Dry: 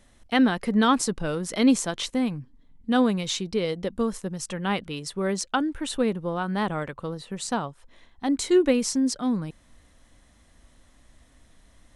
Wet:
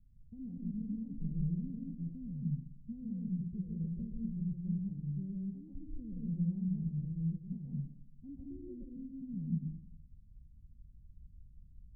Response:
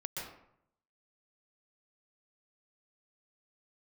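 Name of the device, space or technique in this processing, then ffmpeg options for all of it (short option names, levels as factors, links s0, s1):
club heard from the street: -filter_complex "[0:a]alimiter=limit=0.119:level=0:latency=1:release=295,lowpass=f=160:w=0.5412,lowpass=f=160:w=1.3066[s0];[1:a]atrim=start_sample=2205[s1];[s0][s1]afir=irnorm=-1:irlink=0,volume=1.12"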